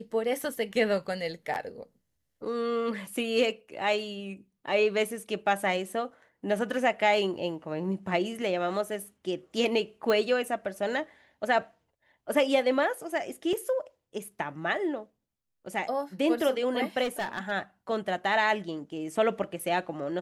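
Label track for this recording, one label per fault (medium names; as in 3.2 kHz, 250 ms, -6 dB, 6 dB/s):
10.100000	10.100000	pop -15 dBFS
13.530000	13.530000	dropout 2.6 ms
17.030000	17.520000	clipped -26.5 dBFS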